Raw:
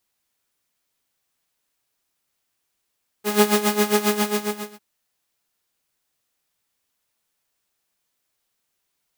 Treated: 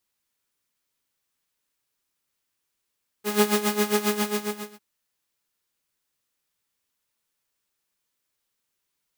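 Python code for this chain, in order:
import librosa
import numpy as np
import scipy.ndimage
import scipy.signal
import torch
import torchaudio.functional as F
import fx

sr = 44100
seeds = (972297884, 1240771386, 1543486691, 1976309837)

y = fx.peak_eq(x, sr, hz=710.0, db=-8.0, octaves=0.23)
y = y * 10.0 ** (-3.5 / 20.0)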